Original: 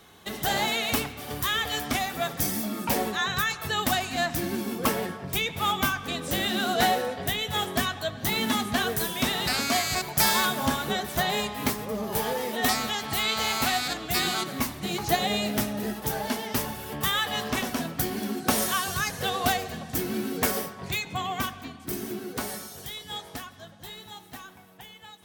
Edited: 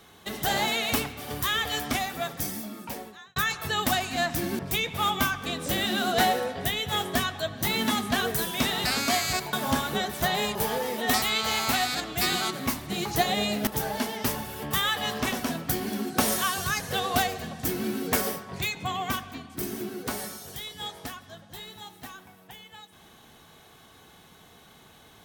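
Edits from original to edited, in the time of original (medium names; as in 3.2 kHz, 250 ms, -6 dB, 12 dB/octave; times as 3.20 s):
1.85–3.36 s: fade out
4.59–5.21 s: delete
10.15–10.48 s: delete
11.50–12.10 s: delete
12.77–13.15 s: delete
15.60–15.97 s: delete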